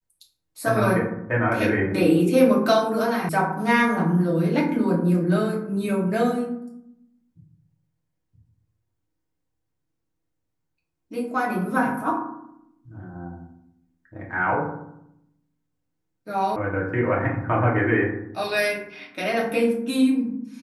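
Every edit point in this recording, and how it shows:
3.29 sound cut off
16.56 sound cut off

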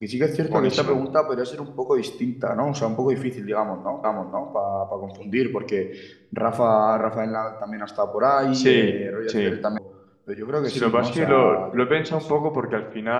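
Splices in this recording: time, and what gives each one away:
4.04 repeat of the last 0.48 s
9.78 sound cut off

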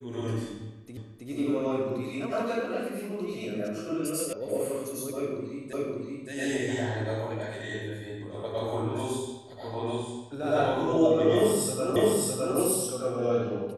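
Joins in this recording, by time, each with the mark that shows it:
0.97 repeat of the last 0.32 s
4.33 sound cut off
5.73 repeat of the last 0.57 s
11.96 repeat of the last 0.61 s

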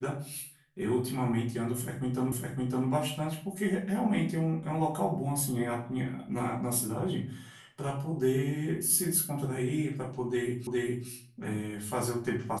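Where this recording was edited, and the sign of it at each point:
2.32 repeat of the last 0.56 s
10.67 repeat of the last 0.41 s

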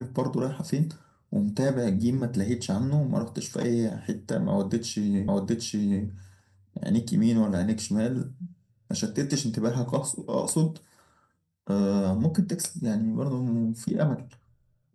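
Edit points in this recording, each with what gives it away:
5.28 repeat of the last 0.77 s

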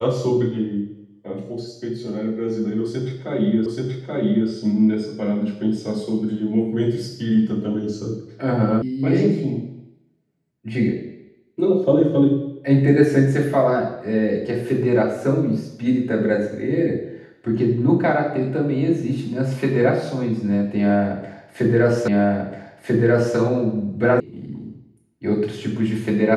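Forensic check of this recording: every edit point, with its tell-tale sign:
3.66 repeat of the last 0.83 s
8.82 sound cut off
22.08 repeat of the last 1.29 s
24.2 sound cut off

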